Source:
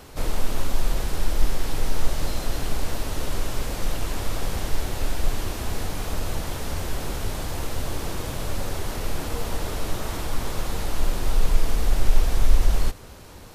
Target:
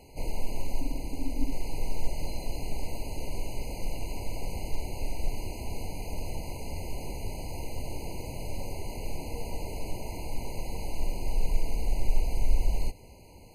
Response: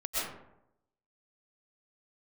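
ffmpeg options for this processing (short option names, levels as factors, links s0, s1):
-filter_complex "[0:a]asettb=1/sr,asplit=3[s0][s1][s2];[s0]atrim=end=0.814[s3];[s1]atrim=start=0.81:end=1.52,asetpts=PTS-STARTPTS,afade=t=in:d=0.004:c=qsin,afade=t=out:st=0.706:d=0.004:c=qsin,tremolo=f=270:d=0.462[s4];[s2]atrim=start=1.516[s5];[s3][s4]acrossfade=d=0.004:c1=hsin:c2=qsin[s6];[s6][s5]acrossfade=d=0.004:c1=qsin:c2=hsin,afftfilt=real='re*eq(mod(floor(b*sr/1024/1000),2),0)':imag='im*eq(mod(floor(b*sr/1024/1000),2),0)':win_size=1024:overlap=0.75,volume=0.447"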